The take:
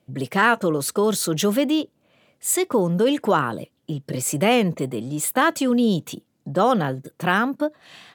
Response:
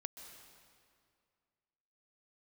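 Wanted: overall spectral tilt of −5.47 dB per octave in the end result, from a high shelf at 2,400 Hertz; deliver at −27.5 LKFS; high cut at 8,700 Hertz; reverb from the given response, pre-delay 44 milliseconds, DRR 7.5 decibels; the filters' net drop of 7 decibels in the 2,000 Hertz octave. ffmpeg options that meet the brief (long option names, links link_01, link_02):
-filter_complex "[0:a]lowpass=8700,equalizer=frequency=2000:width_type=o:gain=-8.5,highshelf=frequency=2400:gain=-3,asplit=2[link_01][link_02];[1:a]atrim=start_sample=2205,adelay=44[link_03];[link_02][link_03]afir=irnorm=-1:irlink=0,volume=-4.5dB[link_04];[link_01][link_04]amix=inputs=2:normalize=0,volume=-5dB"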